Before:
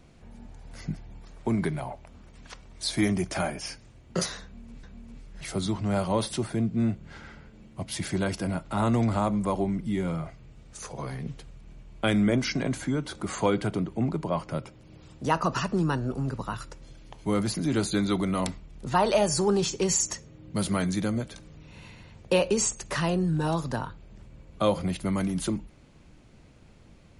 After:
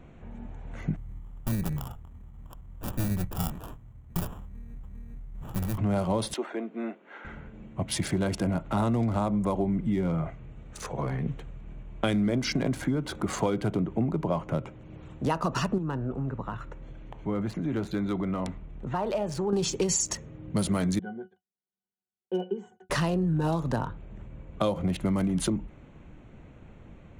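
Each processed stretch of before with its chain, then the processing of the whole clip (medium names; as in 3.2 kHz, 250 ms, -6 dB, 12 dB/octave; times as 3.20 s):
0.96–5.78 s: comb filter that takes the minimum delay 0.91 ms + sample-rate reducer 2.1 kHz + FFT filter 110 Hz 0 dB, 350 Hz -11 dB, 3.1 kHz -11 dB, 4.6 kHz -9 dB, 11 kHz +3 dB
6.34–7.25 s: Bessel high-pass 470 Hz, order 8 + distance through air 110 m
15.78–19.53 s: compression 1.5:1, threshold -44 dBFS + low-pass 3.7 kHz 6 dB/octave
20.99–22.90 s: Bessel high-pass 300 Hz, order 4 + gate -45 dBFS, range -40 dB + pitch-class resonator F#, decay 0.11 s
whole clip: local Wiener filter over 9 samples; dynamic bell 1.7 kHz, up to -4 dB, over -41 dBFS, Q 0.77; compression, threshold -28 dBFS; trim +5 dB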